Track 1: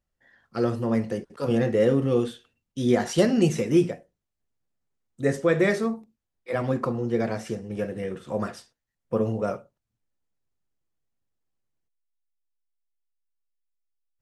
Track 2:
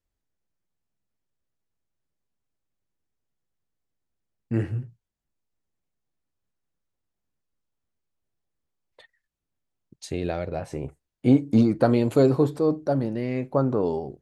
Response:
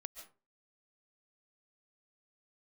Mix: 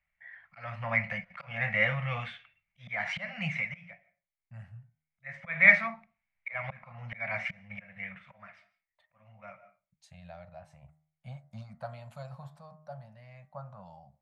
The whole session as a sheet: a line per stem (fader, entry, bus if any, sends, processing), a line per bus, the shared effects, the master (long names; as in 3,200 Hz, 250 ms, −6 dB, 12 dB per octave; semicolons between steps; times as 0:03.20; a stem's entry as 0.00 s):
0.0 dB, 0.00 s, send −18.5 dB, volume swells 313 ms; low-pass with resonance 2,200 Hz, resonance Q 12; automatic ducking −21 dB, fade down 1.40 s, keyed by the second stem
−12.5 dB, 0.00 s, no send, high-shelf EQ 2,700 Hz −9.5 dB; hum removal 77.17 Hz, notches 27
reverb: on, RT60 0.35 s, pre-delay 100 ms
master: elliptic band-stop filter 190–620 Hz, stop band 40 dB; low-shelf EQ 420 Hz −5.5 dB